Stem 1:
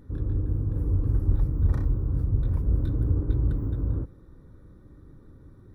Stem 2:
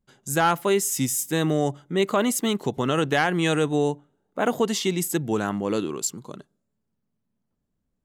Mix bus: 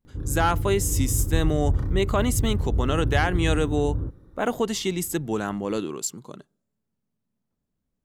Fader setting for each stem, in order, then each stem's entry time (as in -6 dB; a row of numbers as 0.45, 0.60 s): -0.5, -2.0 dB; 0.05, 0.00 s